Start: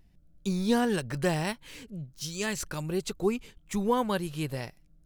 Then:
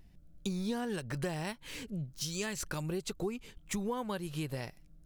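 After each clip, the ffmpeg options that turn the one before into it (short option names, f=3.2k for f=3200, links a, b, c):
-af "acompressor=threshold=-36dB:ratio=5,volume=2.5dB"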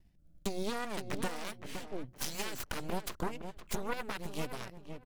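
-filter_complex "[0:a]agate=range=-33dB:threshold=-55dB:ratio=3:detection=peak,aeval=exprs='0.0794*(cos(1*acos(clip(val(0)/0.0794,-1,1)))-cos(1*PI/2))+0.00316*(cos(3*acos(clip(val(0)/0.0794,-1,1)))-cos(3*PI/2))+0.0224*(cos(6*acos(clip(val(0)/0.0794,-1,1)))-cos(6*PI/2))+0.0178*(cos(7*acos(clip(val(0)/0.0794,-1,1)))-cos(7*PI/2))':c=same,asplit=2[a][b];[b]adelay=515,lowpass=f=1.6k:p=1,volume=-7.5dB,asplit=2[c][d];[d]adelay=515,lowpass=f=1.6k:p=1,volume=0.24,asplit=2[e][f];[f]adelay=515,lowpass=f=1.6k:p=1,volume=0.24[g];[a][c][e][g]amix=inputs=4:normalize=0,volume=-2dB"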